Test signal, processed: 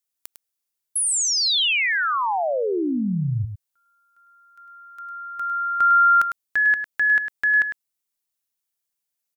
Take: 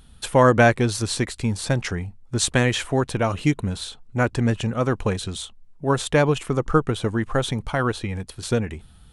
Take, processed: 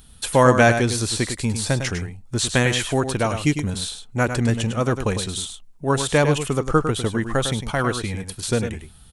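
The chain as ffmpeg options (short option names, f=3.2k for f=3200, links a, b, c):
-filter_complex "[0:a]acrossover=split=3900[a][b];[b]acompressor=threshold=-31dB:ratio=4:attack=1:release=60[c];[a][c]amix=inputs=2:normalize=0,highshelf=f=4.9k:g=11,asplit=2[d][e];[e]aecho=0:1:103:0.376[f];[d][f]amix=inputs=2:normalize=0"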